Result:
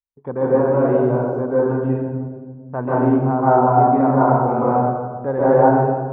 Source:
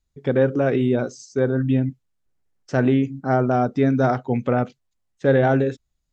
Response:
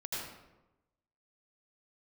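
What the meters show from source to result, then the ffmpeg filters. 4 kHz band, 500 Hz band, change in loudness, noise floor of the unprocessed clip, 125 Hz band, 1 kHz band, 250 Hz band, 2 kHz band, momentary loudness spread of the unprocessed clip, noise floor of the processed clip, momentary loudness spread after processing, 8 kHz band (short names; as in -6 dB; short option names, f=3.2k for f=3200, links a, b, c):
under -20 dB, +4.5 dB, +4.0 dB, -74 dBFS, +1.5 dB, +10.0 dB, +2.0 dB, -2.5 dB, 6 LU, -38 dBFS, 13 LU, n/a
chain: -filter_complex "[0:a]lowpass=f=1k:t=q:w=7.2,agate=range=-22dB:threshold=-42dB:ratio=16:detection=peak[a];[1:a]atrim=start_sample=2205,asetrate=25137,aresample=44100[b];[a][b]afir=irnorm=-1:irlink=0,volume=-5.5dB"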